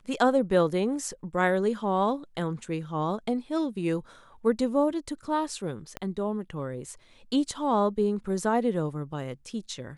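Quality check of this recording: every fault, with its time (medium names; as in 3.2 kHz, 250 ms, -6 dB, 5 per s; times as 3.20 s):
5.97 s: pop -19 dBFS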